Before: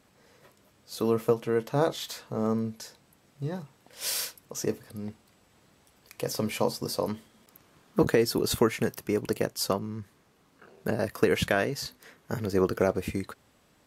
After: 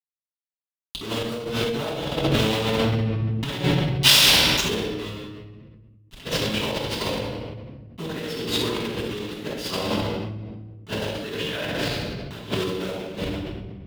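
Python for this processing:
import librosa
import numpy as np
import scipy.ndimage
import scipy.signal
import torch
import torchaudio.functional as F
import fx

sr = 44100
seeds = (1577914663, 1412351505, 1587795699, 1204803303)

p1 = fx.delta_hold(x, sr, step_db=-26.0)
p2 = p1 + fx.echo_feedback(p1, sr, ms=65, feedback_pct=39, wet_db=-8.0, dry=0)
p3 = fx.room_shoebox(p2, sr, seeds[0], volume_m3=950.0, walls='mixed', distance_m=9.9)
p4 = fx.over_compress(p3, sr, threshold_db=-19.0, ratio=-1.0)
p5 = scipy.signal.sosfilt(scipy.signal.butter(2, 54.0, 'highpass', fs=sr, output='sos'), p4)
p6 = fx.peak_eq(p5, sr, hz=3300.0, db=14.0, octaves=0.95)
p7 = fx.sustainer(p6, sr, db_per_s=23.0)
y = p7 * librosa.db_to_amplitude(-9.5)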